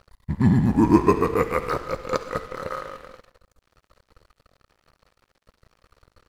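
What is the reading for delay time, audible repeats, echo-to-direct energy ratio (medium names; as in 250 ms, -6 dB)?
67 ms, 3, -20.0 dB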